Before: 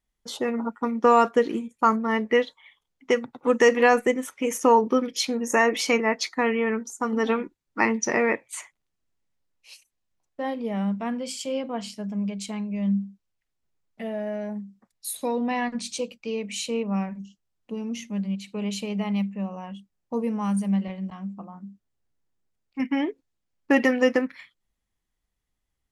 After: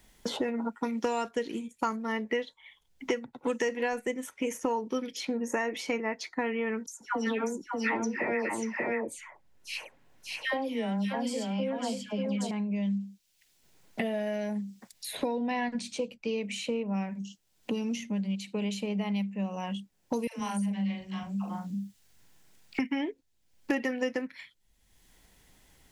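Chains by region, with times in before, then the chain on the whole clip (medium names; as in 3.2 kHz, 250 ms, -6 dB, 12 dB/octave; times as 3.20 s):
6.86–12.51 s: phase dispersion lows, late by 147 ms, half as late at 1.6 kHz + delay 586 ms -5 dB
20.27–22.79 s: peaking EQ 370 Hz -8.5 dB 2.4 oct + doubling 40 ms -4.5 dB + phase dispersion lows, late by 129 ms, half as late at 430 Hz
whole clip: band-stop 1.2 kHz, Q 7.3; three bands compressed up and down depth 100%; trim -6.5 dB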